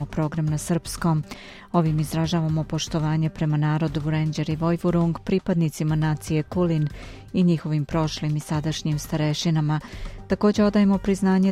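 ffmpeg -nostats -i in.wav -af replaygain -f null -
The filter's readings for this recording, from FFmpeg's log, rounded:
track_gain = +4.1 dB
track_peak = 0.311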